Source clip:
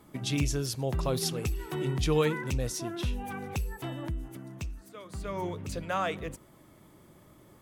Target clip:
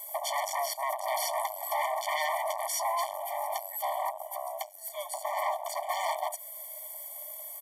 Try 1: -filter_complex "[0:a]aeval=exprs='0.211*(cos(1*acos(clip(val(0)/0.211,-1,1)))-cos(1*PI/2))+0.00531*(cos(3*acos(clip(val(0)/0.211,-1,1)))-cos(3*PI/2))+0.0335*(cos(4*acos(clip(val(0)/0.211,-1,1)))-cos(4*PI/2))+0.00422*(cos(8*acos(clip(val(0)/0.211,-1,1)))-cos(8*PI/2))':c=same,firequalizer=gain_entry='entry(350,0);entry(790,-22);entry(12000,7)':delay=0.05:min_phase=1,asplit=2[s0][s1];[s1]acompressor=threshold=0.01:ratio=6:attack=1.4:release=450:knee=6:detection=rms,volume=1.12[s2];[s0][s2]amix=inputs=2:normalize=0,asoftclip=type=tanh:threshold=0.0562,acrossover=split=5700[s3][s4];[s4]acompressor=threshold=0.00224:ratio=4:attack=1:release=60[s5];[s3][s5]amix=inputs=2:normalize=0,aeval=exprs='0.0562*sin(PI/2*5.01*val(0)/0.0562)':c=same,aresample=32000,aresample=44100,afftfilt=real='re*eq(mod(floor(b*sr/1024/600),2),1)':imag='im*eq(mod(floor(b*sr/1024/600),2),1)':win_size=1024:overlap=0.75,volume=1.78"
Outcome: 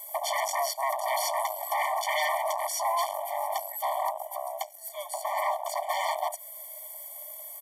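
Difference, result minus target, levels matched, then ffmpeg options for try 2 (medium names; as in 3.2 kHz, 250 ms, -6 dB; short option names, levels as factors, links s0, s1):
saturation: distortion -6 dB
-filter_complex "[0:a]aeval=exprs='0.211*(cos(1*acos(clip(val(0)/0.211,-1,1)))-cos(1*PI/2))+0.00531*(cos(3*acos(clip(val(0)/0.211,-1,1)))-cos(3*PI/2))+0.0335*(cos(4*acos(clip(val(0)/0.211,-1,1)))-cos(4*PI/2))+0.00422*(cos(8*acos(clip(val(0)/0.211,-1,1)))-cos(8*PI/2))':c=same,firequalizer=gain_entry='entry(350,0);entry(790,-22);entry(12000,7)':delay=0.05:min_phase=1,asplit=2[s0][s1];[s1]acompressor=threshold=0.01:ratio=6:attack=1.4:release=450:knee=6:detection=rms,volume=1.12[s2];[s0][s2]amix=inputs=2:normalize=0,asoftclip=type=tanh:threshold=0.0237,acrossover=split=5700[s3][s4];[s4]acompressor=threshold=0.00224:ratio=4:attack=1:release=60[s5];[s3][s5]amix=inputs=2:normalize=0,aeval=exprs='0.0562*sin(PI/2*5.01*val(0)/0.0562)':c=same,aresample=32000,aresample=44100,afftfilt=real='re*eq(mod(floor(b*sr/1024/600),2),1)':imag='im*eq(mod(floor(b*sr/1024/600),2),1)':win_size=1024:overlap=0.75,volume=1.78"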